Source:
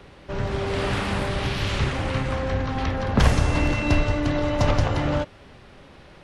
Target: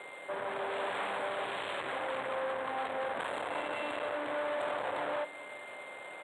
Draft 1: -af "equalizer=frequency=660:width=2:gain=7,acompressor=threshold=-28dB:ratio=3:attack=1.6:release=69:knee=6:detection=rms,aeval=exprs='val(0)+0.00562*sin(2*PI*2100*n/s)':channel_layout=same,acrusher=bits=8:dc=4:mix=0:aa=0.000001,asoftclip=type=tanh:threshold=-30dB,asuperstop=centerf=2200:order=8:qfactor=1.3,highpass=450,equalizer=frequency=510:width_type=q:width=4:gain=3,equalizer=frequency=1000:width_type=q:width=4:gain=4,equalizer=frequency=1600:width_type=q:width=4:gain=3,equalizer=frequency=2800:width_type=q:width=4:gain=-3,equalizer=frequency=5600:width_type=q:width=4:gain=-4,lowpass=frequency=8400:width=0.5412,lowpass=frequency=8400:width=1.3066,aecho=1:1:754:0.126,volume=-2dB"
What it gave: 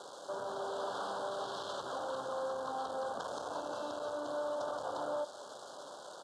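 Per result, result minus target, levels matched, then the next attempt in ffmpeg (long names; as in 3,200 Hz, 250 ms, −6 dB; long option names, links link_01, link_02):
downward compressor: peak gain reduction +15 dB; 2,000 Hz band −8.0 dB; echo 326 ms early
-af "equalizer=frequency=660:width=2:gain=7,aeval=exprs='val(0)+0.00562*sin(2*PI*2100*n/s)':channel_layout=same,acrusher=bits=8:dc=4:mix=0:aa=0.000001,asoftclip=type=tanh:threshold=-30dB,asuperstop=centerf=2200:order=8:qfactor=1.3,highpass=450,equalizer=frequency=510:width_type=q:width=4:gain=3,equalizer=frequency=1000:width_type=q:width=4:gain=4,equalizer=frequency=1600:width_type=q:width=4:gain=3,equalizer=frequency=2800:width_type=q:width=4:gain=-3,equalizer=frequency=5600:width_type=q:width=4:gain=-4,lowpass=frequency=8400:width=0.5412,lowpass=frequency=8400:width=1.3066,aecho=1:1:754:0.126,volume=-2dB"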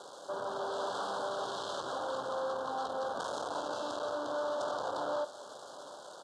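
2,000 Hz band −7.5 dB; echo 326 ms early
-af "equalizer=frequency=660:width=2:gain=7,aeval=exprs='val(0)+0.00562*sin(2*PI*2100*n/s)':channel_layout=same,acrusher=bits=8:dc=4:mix=0:aa=0.000001,asoftclip=type=tanh:threshold=-30dB,asuperstop=centerf=5500:order=8:qfactor=1.3,highpass=450,equalizer=frequency=510:width_type=q:width=4:gain=3,equalizer=frequency=1000:width_type=q:width=4:gain=4,equalizer=frequency=1600:width_type=q:width=4:gain=3,equalizer=frequency=2800:width_type=q:width=4:gain=-3,equalizer=frequency=5600:width_type=q:width=4:gain=-4,lowpass=frequency=8400:width=0.5412,lowpass=frequency=8400:width=1.3066,aecho=1:1:754:0.126,volume=-2dB"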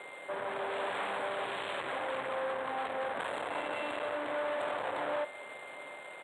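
echo 326 ms early
-af "equalizer=frequency=660:width=2:gain=7,aeval=exprs='val(0)+0.00562*sin(2*PI*2100*n/s)':channel_layout=same,acrusher=bits=8:dc=4:mix=0:aa=0.000001,asoftclip=type=tanh:threshold=-30dB,asuperstop=centerf=5500:order=8:qfactor=1.3,highpass=450,equalizer=frequency=510:width_type=q:width=4:gain=3,equalizer=frequency=1000:width_type=q:width=4:gain=4,equalizer=frequency=1600:width_type=q:width=4:gain=3,equalizer=frequency=2800:width_type=q:width=4:gain=-3,equalizer=frequency=5600:width_type=q:width=4:gain=-4,lowpass=frequency=8400:width=0.5412,lowpass=frequency=8400:width=1.3066,aecho=1:1:1080:0.126,volume=-2dB"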